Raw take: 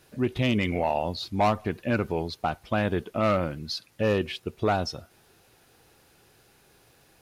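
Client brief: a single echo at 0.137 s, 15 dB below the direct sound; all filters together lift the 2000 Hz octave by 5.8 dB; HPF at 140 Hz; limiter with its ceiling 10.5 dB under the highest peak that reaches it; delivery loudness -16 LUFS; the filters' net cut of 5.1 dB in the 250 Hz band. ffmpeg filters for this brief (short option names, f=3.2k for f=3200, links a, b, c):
-af "highpass=140,equalizer=f=250:t=o:g=-6,equalizer=f=2k:t=o:g=7.5,alimiter=limit=-20.5dB:level=0:latency=1,aecho=1:1:137:0.178,volume=17dB"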